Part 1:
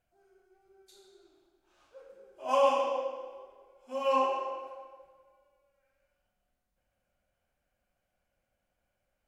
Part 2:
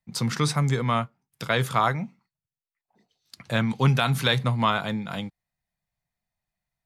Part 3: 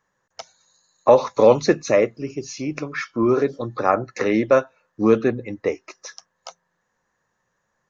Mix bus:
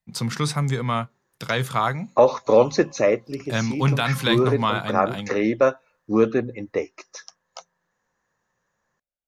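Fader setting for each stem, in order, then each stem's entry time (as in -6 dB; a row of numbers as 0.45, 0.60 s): -19.5, 0.0, -2.0 dB; 0.00, 0.00, 1.10 s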